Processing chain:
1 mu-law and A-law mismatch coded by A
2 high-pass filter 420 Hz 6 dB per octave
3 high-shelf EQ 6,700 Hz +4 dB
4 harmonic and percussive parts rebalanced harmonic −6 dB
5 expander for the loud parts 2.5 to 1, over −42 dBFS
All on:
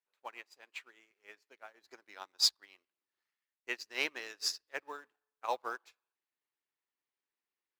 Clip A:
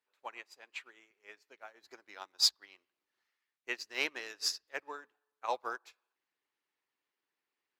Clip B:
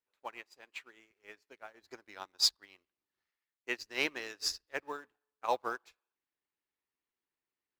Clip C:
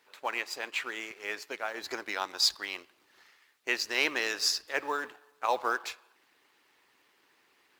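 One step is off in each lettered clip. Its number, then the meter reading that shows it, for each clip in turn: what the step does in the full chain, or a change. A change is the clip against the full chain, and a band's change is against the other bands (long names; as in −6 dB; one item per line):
1, distortion level −20 dB
2, 250 Hz band +5.0 dB
5, 4 kHz band −5.0 dB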